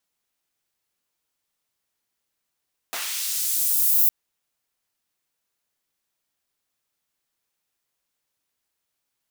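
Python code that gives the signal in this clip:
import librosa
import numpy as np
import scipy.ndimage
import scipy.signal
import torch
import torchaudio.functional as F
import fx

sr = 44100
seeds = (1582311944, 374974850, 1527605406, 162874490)

y = fx.riser_noise(sr, seeds[0], length_s=1.16, colour='pink', kind='highpass', start_hz=500.0, end_hz=15000.0, q=0.71, swell_db=22.5, law='linear')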